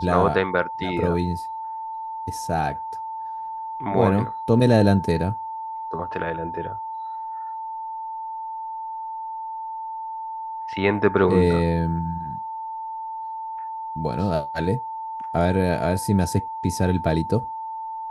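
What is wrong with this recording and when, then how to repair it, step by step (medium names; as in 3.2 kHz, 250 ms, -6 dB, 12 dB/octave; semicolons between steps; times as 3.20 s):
whine 890 Hz -29 dBFS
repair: band-stop 890 Hz, Q 30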